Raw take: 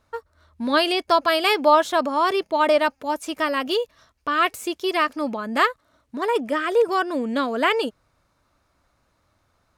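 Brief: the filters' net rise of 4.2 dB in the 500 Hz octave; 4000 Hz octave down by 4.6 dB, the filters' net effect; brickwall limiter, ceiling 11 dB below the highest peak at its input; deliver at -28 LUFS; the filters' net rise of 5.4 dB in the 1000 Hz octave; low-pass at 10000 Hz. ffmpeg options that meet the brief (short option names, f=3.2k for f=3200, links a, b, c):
-af "lowpass=10k,equalizer=f=500:t=o:g=3.5,equalizer=f=1k:t=o:g=6,equalizer=f=4k:t=o:g=-7,volume=-7dB,alimiter=limit=-17.5dB:level=0:latency=1"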